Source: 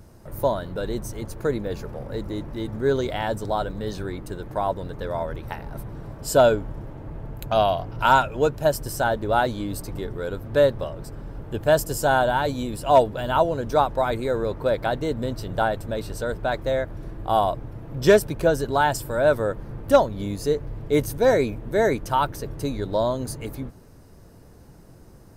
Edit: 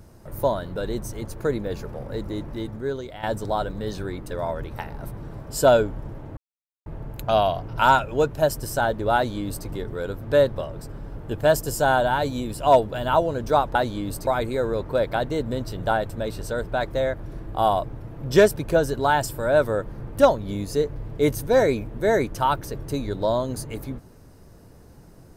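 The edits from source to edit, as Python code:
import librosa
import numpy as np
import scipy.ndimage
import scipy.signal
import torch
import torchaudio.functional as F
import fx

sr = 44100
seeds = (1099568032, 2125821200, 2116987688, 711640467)

y = fx.edit(x, sr, fx.fade_out_to(start_s=2.57, length_s=0.66, curve='qua', floor_db=-11.0),
    fx.cut(start_s=4.31, length_s=0.72),
    fx.insert_silence(at_s=7.09, length_s=0.49),
    fx.duplicate(start_s=9.38, length_s=0.52, to_s=13.98), tone=tone)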